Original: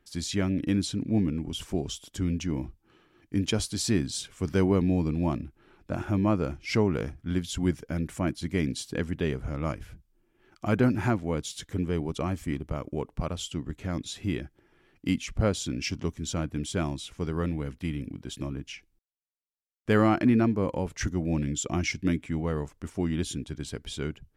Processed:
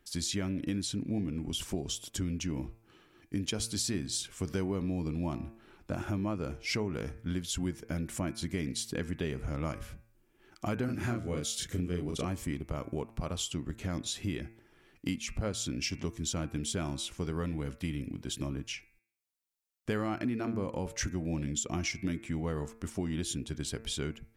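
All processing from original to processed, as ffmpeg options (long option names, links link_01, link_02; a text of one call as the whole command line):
ffmpeg -i in.wav -filter_complex "[0:a]asettb=1/sr,asplit=3[link_01][link_02][link_03];[link_01]atrim=end=10.854[link_04];[link_02]atrim=start=10.85:end=12.25,asetpts=PTS-STARTPTS,afade=type=in:duration=0.004:curve=qsin,afade=type=out:start_time=1.396:duration=0.004:curve=qsin,equalizer=frequency=890:width=3.4:gain=-10,asplit=2[link_05][link_06];[link_06]adelay=34,volume=-2.5dB[link_07];[link_05][link_07]amix=inputs=2:normalize=0,atrim=end_sample=61740[link_08];[link_03]atrim=start=12.246[link_09];[link_04][link_08]acrossfade=duration=0.004:curve1=hsin:curve2=qsin[link_10];[link_10][link_09]acrossfade=duration=0.004:curve1=qsin:curve2=hsin,highshelf=frequency=4000:gain=6.5,bandreject=frequency=112.9:width_type=h:width=4,bandreject=frequency=225.8:width_type=h:width=4,bandreject=frequency=338.7:width_type=h:width=4,bandreject=frequency=451.6:width_type=h:width=4,bandreject=frequency=564.5:width_type=h:width=4,bandreject=frequency=677.4:width_type=h:width=4,bandreject=frequency=790.3:width_type=h:width=4,bandreject=frequency=903.2:width_type=h:width=4,bandreject=frequency=1016.1:width_type=h:width=4,bandreject=frequency=1129:width_type=h:width=4,bandreject=frequency=1241.9:width_type=h:width=4,bandreject=frequency=1354.8:width_type=h:width=4,bandreject=frequency=1467.7:width_type=h:width=4,bandreject=frequency=1580.6:width_type=h:width=4,bandreject=frequency=1693.5:width_type=h:width=4,bandreject=frequency=1806.4:width_type=h:width=4,bandreject=frequency=1919.3:width_type=h:width=4,bandreject=frequency=2032.2:width_type=h:width=4,bandreject=frequency=2145.1:width_type=h:width=4,bandreject=frequency=2258:width_type=h:width=4,bandreject=frequency=2370.9:width_type=h:width=4,bandreject=frequency=2483.8:width_type=h:width=4,bandreject=frequency=2596.7:width_type=h:width=4,bandreject=frequency=2709.6:width_type=h:width=4,acompressor=threshold=-31dB:ratio=4" out.wav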